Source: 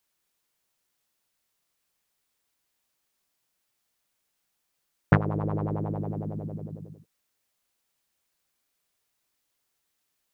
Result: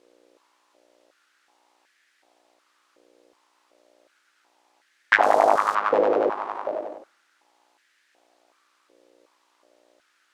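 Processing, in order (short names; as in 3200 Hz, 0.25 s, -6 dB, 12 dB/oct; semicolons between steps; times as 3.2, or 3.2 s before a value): 5.23–5.75 switching spikes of -29 dBFS; hum 60 Hz, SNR 29 dB; full-wave rectifier; air absorption 75 m; dark delay 63 ms, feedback 57%, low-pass 1200 Hz, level -12.5 dB; maximiser +14 dB; stepped high-pass 2.7 Hz 500–1700 Hz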